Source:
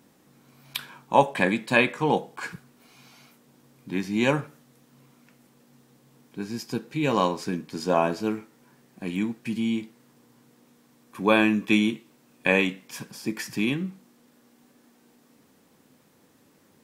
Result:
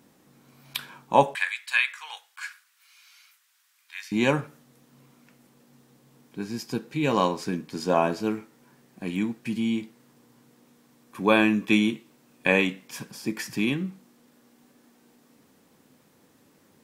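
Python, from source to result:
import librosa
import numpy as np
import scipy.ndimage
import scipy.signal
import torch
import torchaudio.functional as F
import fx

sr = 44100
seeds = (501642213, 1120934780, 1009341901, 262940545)

y = fx.highpass(x, sr, hz=1400.0, slope=24, at=(1.35, 4.12))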